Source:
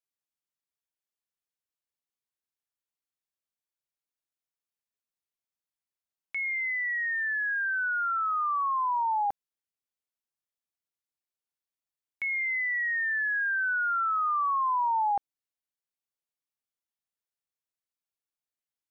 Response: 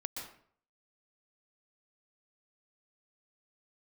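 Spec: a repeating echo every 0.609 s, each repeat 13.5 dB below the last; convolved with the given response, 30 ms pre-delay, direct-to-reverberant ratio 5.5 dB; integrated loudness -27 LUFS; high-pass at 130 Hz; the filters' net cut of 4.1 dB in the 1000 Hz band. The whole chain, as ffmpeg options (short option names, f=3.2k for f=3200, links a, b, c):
-filter_complex "[0:a]highpass=130,equalizer=f=1k:t=o:g=-5,aecho=1:1:609|1218:0.211|0.0444,asplit=2[a][b];[1:a]atrim=start_sample=2205,adelay=30[c];[b][c]afir=irnorm=-1:irlink=0,volume=-5.5dB[d];[a][d]amix=inputs=2:normalize=0,volume=1.5dB"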